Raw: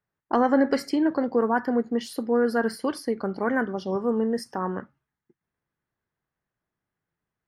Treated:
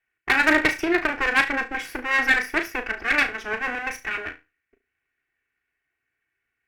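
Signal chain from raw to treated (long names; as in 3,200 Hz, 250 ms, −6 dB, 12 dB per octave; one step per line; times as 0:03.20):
lower of the sound and its delayed copy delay 3 ms
flat-topped bell 1,800 Hz +15 dB 1.2 octaves
speed change +12%
harmonic generator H 2 −12 dB, 4 −24 dB, 7 −35 dB, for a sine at −9.5 dBFS
flutter between parallel walls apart 6.1 metres, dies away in 0.24 s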